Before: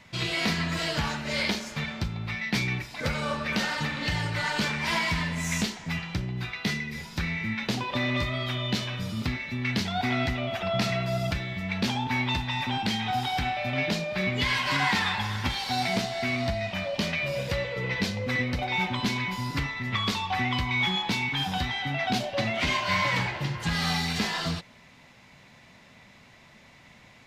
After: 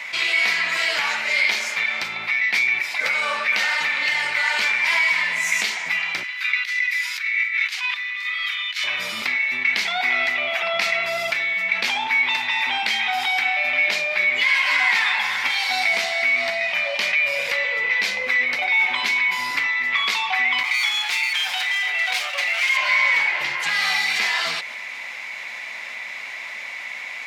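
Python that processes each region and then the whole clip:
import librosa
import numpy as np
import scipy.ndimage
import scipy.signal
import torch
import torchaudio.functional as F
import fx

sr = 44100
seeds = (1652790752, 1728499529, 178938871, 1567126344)

y = fx.chain(x, sr, fx.over_compress(threshold_db=-33.0, ratio=-0.5),
    fx.highpass(hz=1300.0, slope=24), at=(6.23, 8.84))
y = fx.chain(y, sr, fx.lower_of_two(delay_ms=5.6),
    fx.highpass(hz=1300.0, slope=6), at=(20.63, 22.77))
y = scipy.signal.sosfilt(scipy.signal.butter(2, 750.0, 'highpass', fs=sr, output='sos'), y)
y = fx.peak_eq(y, sr, hz=2200.0, db=11.5, octaves=0.47)
y = fx.env_flatten(y, sr, amount_pct=50)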